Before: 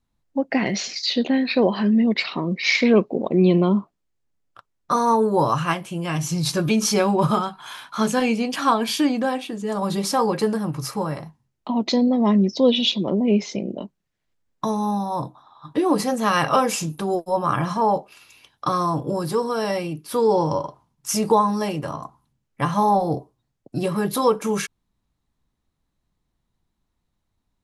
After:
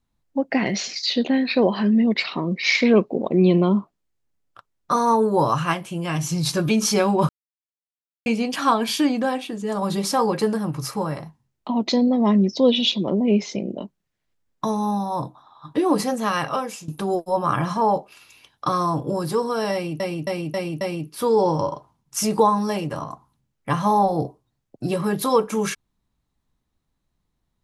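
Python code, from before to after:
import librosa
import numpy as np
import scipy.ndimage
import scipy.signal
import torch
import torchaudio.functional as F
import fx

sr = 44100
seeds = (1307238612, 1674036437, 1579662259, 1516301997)

y = fx.edit(x, sr, fx.silence(start_s=7.29, length_s=0.97),
    fx.fade_out_to(start_s=15.99, length_s=0.89, floor_db=-16.0),
    fx.repeat(start_s=19.73, length_s=0.27, count=5), tone=tone)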